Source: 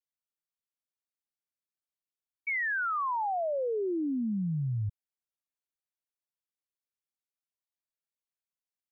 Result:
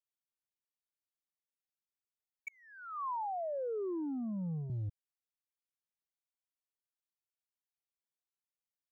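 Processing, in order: sample leveller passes 1; 2.48–4.7 elliptic band-pass 150–1100 Hz, stop band 40 dB; gain -6.5 dB

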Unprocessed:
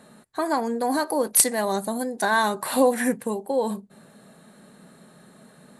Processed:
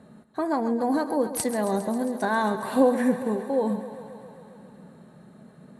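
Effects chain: HPF 49 Hz; tilt -3 dB/oct; on a send: thinning echo 0.135 s, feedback 78%, high-pass 180 Hz, level -12 dB; on the sum: gain -4 dB

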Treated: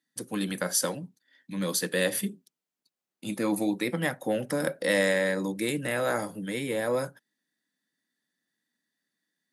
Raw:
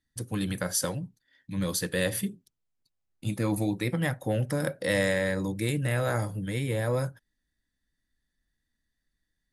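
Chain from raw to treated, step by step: HPF 190 Hz 24 dB/oct; gain +2 dB

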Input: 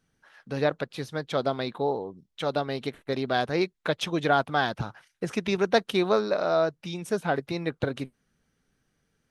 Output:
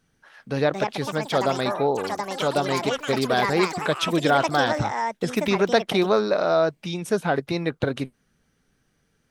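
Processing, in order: in parallel at -2 dB: limiter -18 dBFS, peak gain reduction 9 dB; on the sum: echoes that change speed 0.38 s, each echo +6 st, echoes 3, each echo -6 dB

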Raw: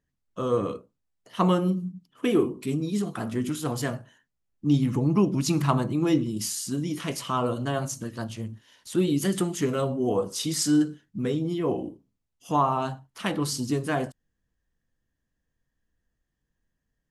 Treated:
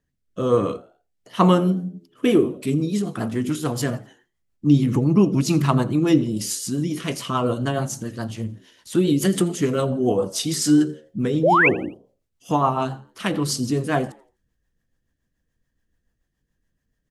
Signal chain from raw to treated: rotary speaker horn 1.2 Hz, later 7 Hz, at 1.73; painted sound rise, 11.43–11.69, 440–2800 Hz -22 dBFS; frequency-shifting echo 84 ms, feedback 38%, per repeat +79 Hz, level -22.5 dB; gain +6.5 dB

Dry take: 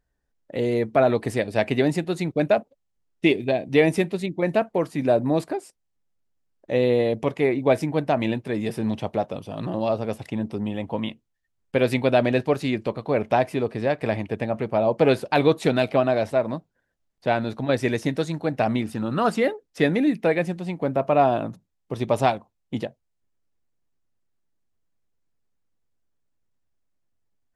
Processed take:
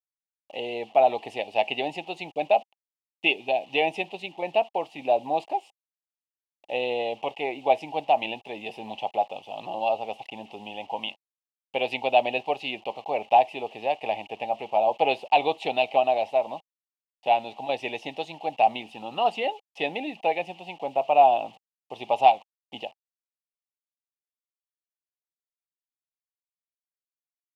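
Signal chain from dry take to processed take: requantised 8-bit, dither none; double band-pass 1500 Hz, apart 1.8 oct; gain +9 dB

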